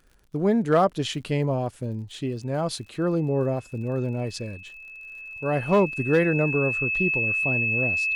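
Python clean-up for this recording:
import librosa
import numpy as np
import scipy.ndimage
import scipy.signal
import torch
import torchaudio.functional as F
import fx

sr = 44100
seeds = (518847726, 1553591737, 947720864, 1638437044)

y = fx.fix_declip(x, sr, threshold_db=-11.5)
y = fx.fix_declick_ar(y, sr, threshold=6.5)
y = fx.notch(y, sr, hz=2600.0, q=30.0)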